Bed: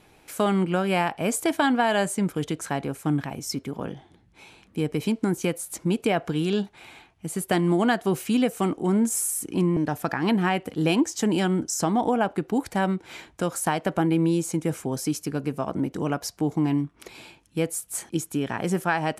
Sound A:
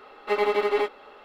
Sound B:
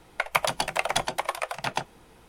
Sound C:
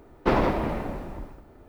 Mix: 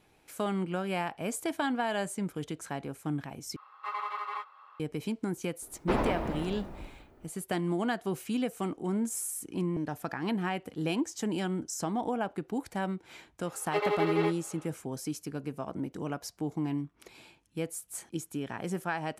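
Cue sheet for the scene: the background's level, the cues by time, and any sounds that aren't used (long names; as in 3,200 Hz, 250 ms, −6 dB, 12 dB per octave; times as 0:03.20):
bed −9 dB
0:03.56: overwrite with A −15.5 dB + high-pass with resonance 1,100 Hz, resonance Q 9.8
0:05.62: mix in C −7 dB
0:13.44: mix in A −5.5 dB + Butterworth high-pass 330 Hz
not used: B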